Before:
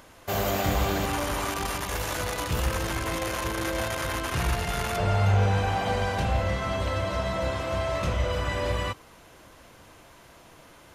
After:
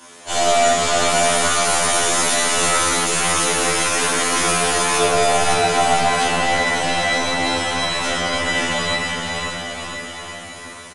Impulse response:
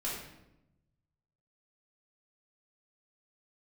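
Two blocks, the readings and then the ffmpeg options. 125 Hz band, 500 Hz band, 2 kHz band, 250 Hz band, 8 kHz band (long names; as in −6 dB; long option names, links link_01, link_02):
−4.5 dB, +9.5 dB, +12.5 dB, +6.0 dB, +19.0 dB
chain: -filter_complex "[0:a]highpass=87,aemphasis=mode=production:type=bsi,acrossover=split=260|4300[link_01][link_02][link_03];[link_01]asoftclip=type=tanh:threshold=-37dB[link_04];[link_04][link_02][link_03]amix=inputs=3:normalize=0,aeval=exprs='0.376*(cos(1*acos(clip(val(0)/0.376,-1,1)))-cos(1*PI/2))+0.0119*(cos(2*acos(clip(val(0)/0.376,-1,1)))-cos(2*PI/2))':channel_layout=same,aecho=1:1:550|1018|1415|1753|2040:0.631|0.398|0.251|0.158|0.1[link_05];[1:a]atrim=start_sample=2205,afade=type=out:start_time=0.42:duration=0.01,atrim=end_sample=18963[link_06];[link_05][link_06]afir=irnorm=-1:irlink=0,aresample=22050,aresample=44100,afftfilt=real='re*2*eq(mod(b,4),0)':imag='im*2*eq(mod(b,4),0)':win_size=2048:overlap=0.75,volume=8.5dB"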